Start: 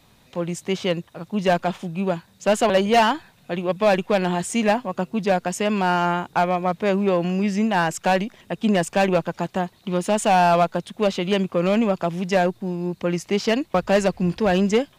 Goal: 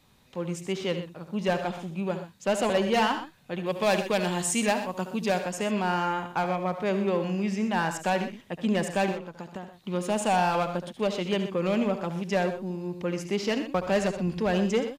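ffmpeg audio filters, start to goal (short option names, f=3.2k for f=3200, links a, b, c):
-filter_complex "[0:a]asettb=1/sr,asplit=3[a][b][c];[a]atrim=end=3.664[d];[b]atrim=start=3.66:end=5.41,asetpts=PTS-STARTPTS,afade=t=in:d=0.004:c=qsin,afade=t=out:st=1.746:d=0.004:c=qsin,highshelf=f=3.5k:g=10.5[e];[c]atrim=start=5.406[f];[d][e]acrossfade=d=0.004:c1=hsin:c2=qsin[g];[g][f]acrossfade=d=0.004:c1=qsin:c2=hsin,asettb=1/sr,asplit=3[h][i][j];[h]atrim=end=9.114[k];[i]atrim=start=9.11:end=9.73,asetpts=PTS-STARTPTS,afade=t=in:d=0.004:c=qsin,afade=t=out:st=0.616:d=0.004:c=qsin,acompressor=threshold=-27dB:ratio=10[l];[j]atrim=start=9.726[m];[k][l]acrossfade=d=0.004:c1=hsin:c2=qsin[n];[n][m]acrossfade=d=0.004:c1=qsin:c2=hsin,bandreject=f=680:w=13,asplit=2[o][p];[p]aecho=0:1:71|84|124:0.251|0.2|0.237[q];[o][q]amix=inputs=2:normalize=0,volume=-6.5dB"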